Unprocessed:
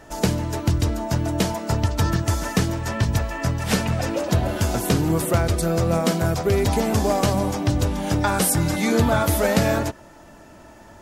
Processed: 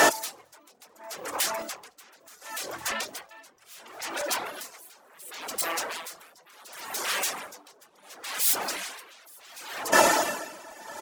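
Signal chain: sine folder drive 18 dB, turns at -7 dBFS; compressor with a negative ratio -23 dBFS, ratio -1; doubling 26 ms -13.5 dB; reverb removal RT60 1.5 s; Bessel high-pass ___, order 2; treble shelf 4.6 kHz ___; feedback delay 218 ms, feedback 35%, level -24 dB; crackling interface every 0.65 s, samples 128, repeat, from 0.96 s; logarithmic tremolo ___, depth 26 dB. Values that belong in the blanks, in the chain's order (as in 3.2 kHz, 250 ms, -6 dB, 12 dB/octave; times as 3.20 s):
610 Hz, +4.5 dB, 0.7 Hz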